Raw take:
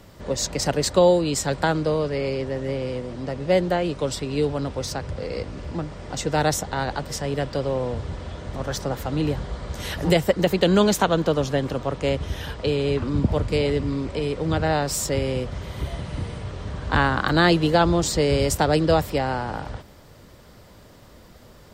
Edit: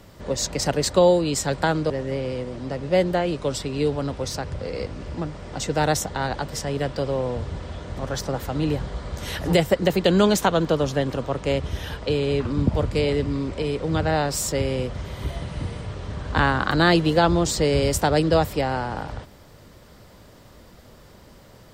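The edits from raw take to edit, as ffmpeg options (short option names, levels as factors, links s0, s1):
-filter_complex "[0:a]asplit=2[s0][s1];[s0]atrim=end=1.902[s2];[s1]atrim=start=2.468[s3];[s2][s3]acrossfade=d=0.004:c1=hsin:c2=hsin"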